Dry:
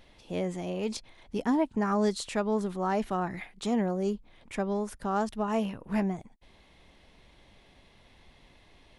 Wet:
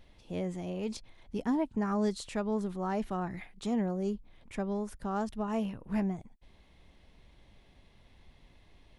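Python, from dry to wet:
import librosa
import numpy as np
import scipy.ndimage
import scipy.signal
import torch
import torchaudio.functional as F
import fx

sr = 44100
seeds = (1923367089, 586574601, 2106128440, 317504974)

y = fx.low_shelf(x, sr, hz=200.0, db=8.0)
y = y * 10.0 ** (-6.0 / 20.0)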